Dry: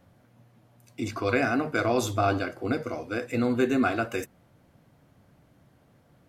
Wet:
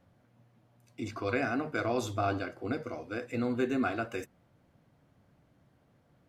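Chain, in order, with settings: high shelf 9200 Hz -8.5 dB; gain -6 dB

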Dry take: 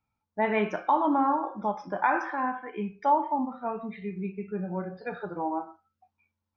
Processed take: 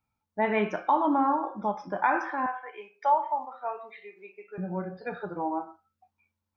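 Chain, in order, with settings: 2.46–4.58 HPF 500 Hz 24 dB/oct

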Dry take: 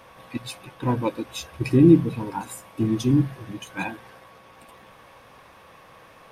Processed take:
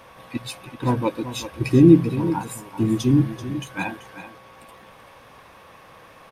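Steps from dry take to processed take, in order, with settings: echo 0.385 s -12.5 dB; gain +2 dB

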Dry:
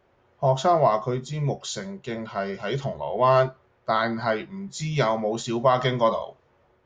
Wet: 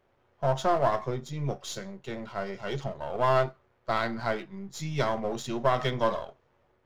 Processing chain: half-wave gain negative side -7 dB; gain -3 dB

